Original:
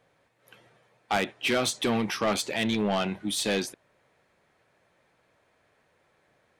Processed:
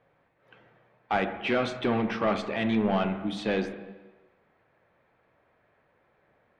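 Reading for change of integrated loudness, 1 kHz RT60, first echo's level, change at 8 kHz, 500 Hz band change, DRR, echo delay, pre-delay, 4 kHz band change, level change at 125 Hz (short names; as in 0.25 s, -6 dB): -0.5 dB, 1.2 s, none, under -20 dB, +0.5 dB, 8.0 dB, none, 28 ms, -8.0 dB, +1.5 dB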